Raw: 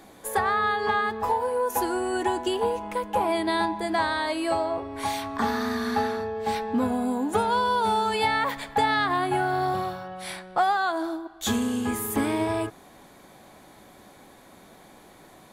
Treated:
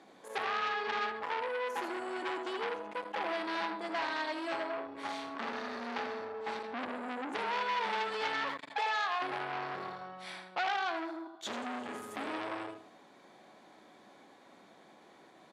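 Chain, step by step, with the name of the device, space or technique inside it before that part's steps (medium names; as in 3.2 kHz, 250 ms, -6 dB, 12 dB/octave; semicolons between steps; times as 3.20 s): 8.70–9.22 s: steep high-pass 460 Hz 36 dB/octave; feedback delay 80 ms, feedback 25%, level -7 dB; public-address speaker with an overloaded transformer (transformer saturation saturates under 2.7 kHz; band-pass 220–5300 Hz); trim -7 dB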